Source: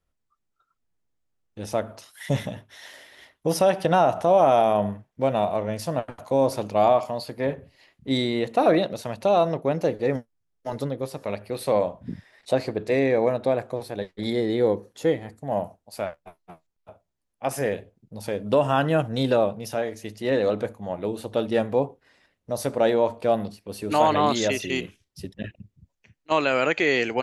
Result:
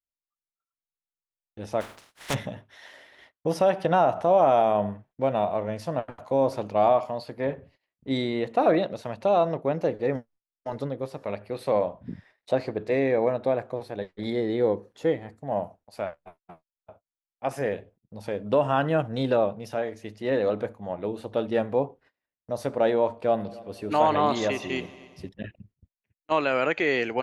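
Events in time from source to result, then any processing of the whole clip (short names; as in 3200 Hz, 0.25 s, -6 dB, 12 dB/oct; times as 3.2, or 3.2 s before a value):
1.8–2.33 spectral contrast lowered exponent 0.25
23.19–25.29 multi-head echo 92 ms, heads all three, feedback 47%, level -23.5 dB
whole clip: gate -51 dBFS, range -24 dB; LPF 2100 Hz 6 dB/oct; low shelf 490 Hz -3.5 dB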